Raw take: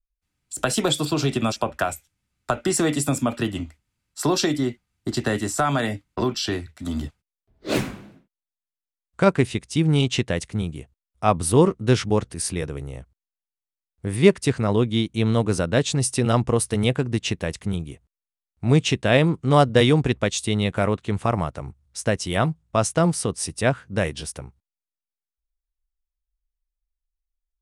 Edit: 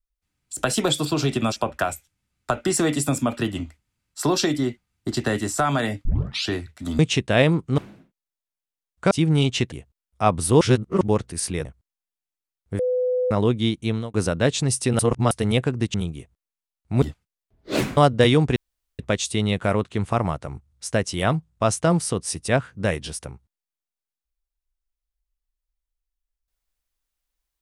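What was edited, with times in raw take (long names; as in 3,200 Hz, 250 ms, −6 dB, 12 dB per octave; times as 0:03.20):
0:06.05: tape start 0.42 s
0:06.99–0:07.94: swap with 0:18.74–0:19.53
0:09.27–0:09.69: remove
0:10.30–0:10.74: remove
0:11.63–0:12.03: reverse
0:12.67–0:12.97: remove
0:14.11–0:14.63: beep over 502 Hz −19 dBFS
0:15.14–0:15.46: fade out
0:16.31–0:16.63: reverse
0:17.26–0:17.66: remove
0:20.12: splice in room tone 0.43 s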